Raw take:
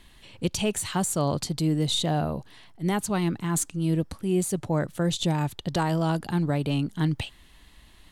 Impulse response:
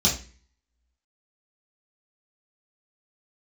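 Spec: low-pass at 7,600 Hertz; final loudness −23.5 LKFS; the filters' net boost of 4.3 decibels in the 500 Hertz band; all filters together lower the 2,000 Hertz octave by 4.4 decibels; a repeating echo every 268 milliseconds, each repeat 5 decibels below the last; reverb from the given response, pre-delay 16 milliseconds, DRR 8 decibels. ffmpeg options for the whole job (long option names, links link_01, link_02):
-filter_complex "[0:a]lowpass=7600,equalizer=frequency=500:width_type=o:gain=6,equalizer=frequency=2000:width_type=o:gain=-6.5,aecho=1:1:268|536|804|1072|1340|1608|1876:0.562|0.315|0.176|0.0988|0.0553|0.031|0.0173,asplit=2[link_01][link_02];[1:a]atrim=start_sample=2205,adelay=16[link_03];[link_02][link_03]afir=irnorm=-1:irlink=0,volume=-20.5dB[link_04];[link_01][link_04]amix=inputs=2:normalize=0,volume=-1.5dB"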